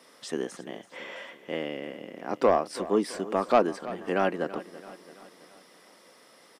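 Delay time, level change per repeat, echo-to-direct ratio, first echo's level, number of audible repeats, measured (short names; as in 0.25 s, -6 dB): 0.333 s, -5.5 dB, -14.5 dB, -16.0 dB, 4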